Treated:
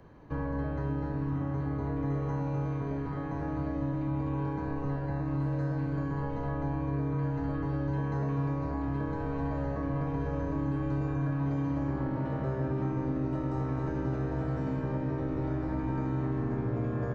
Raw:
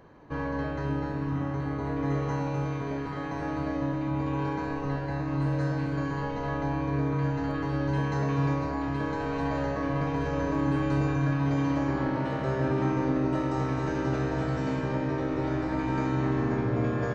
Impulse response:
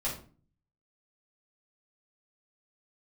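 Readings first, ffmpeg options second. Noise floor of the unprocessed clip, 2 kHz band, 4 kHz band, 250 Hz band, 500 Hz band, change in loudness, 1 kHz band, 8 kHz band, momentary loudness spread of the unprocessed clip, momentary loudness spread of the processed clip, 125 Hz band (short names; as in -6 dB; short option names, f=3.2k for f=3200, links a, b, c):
-33 dBFS, -9.0 dB, under -10 dB, -3.5 dB, -5.0 dB, -3.5 dB, -6.0 dB, n/a, 5 LU, 3 LU, -1.5 dB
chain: -filter_complex "[0:a]lowshelf=f=190:g=9,acrossover=split=240|1700[a][b][c];[a]acompressor=threshold=-28dB:ratio=4[d];[b]acompressor=threshold=-30dB:ratio=4[e];[c]acompressor=threshold=-59dB:ratio=4[f];[d][e][f]amix=inputs=3:normalize=0,volume=-3.5dB"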